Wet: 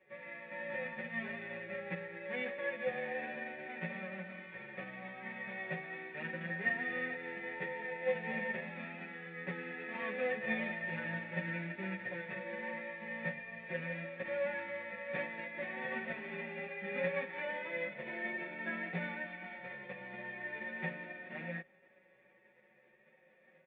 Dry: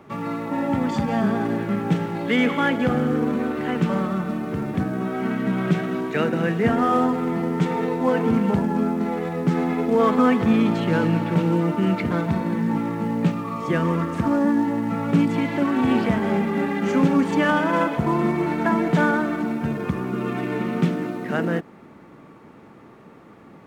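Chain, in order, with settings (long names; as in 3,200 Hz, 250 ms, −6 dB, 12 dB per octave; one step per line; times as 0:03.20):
spectral envelope flattened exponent 0.1
formant resonators in series e
mains-hum notches 50/100/150/200 Hz
comb filter 5.4 ms, depth 94%
barber-pole flanger 11.9 ms +0.4 Hz
level −1 dB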